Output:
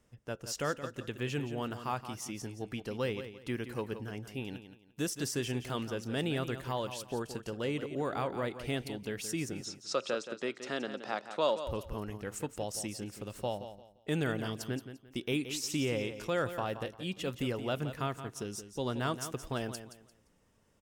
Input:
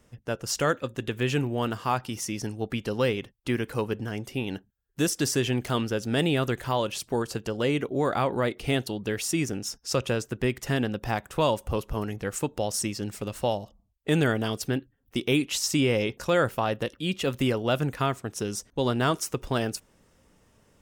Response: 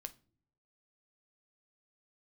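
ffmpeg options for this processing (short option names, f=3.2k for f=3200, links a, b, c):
-filter_complex "[0:a]asettb=1/sr,asplit=3[a][b][c];[a]atrim=end=9.614[d];[b]atrim=start=9.61:end=11.63,asetpts=PTS-STARTPTS,afade=t=in:d=0.004:c=qsin,afade=t=out:st=2.016:d=0.004:c=qsin,highpass=f=210:w=0.5412,highpass=f=210:w=1.3066,equalizer=f=250:t=q:w=4:g=-3,equalizer=f=580:t=q:w=4:g=6,equalizer=f=1.3k:t=q:w=4:g=8,equalizer=f=4k:t=q:w=4:g=9,lowpass=f=7.9k:w=0.5412,lowpass=f=7.9k:w=1.3066[e];[c]atrim=start=11.626[f];[d][e]acrossfade=d=0.004:c1=hsin:c2=qsin[g];[g][f]acrossfade=d=0.004:c1=qsin:c2=hsin,aecho=1:1:173|346|519:0.282|0.0761|0.0205,volume=-9dB"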